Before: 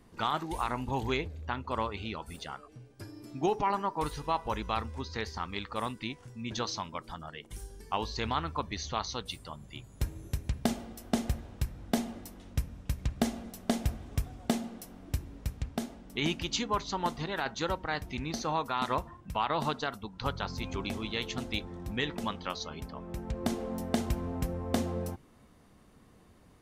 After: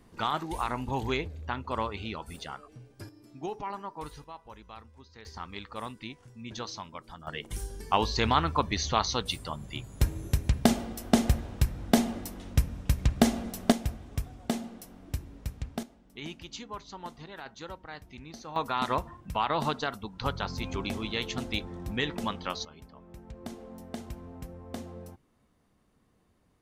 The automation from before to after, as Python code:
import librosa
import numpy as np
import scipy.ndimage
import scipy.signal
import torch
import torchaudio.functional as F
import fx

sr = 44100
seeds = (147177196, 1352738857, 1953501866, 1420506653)

y = fx.gain(x, sr, db=fx.steps((0.0, 1.0), (3.09, -7.5), (4.24, -15.0), (5.25, -4.0), (7.27, 7.0), (13.72, -1.0), (15.83, -10.0), (18.56, 2.0), (22.65, -9.5)))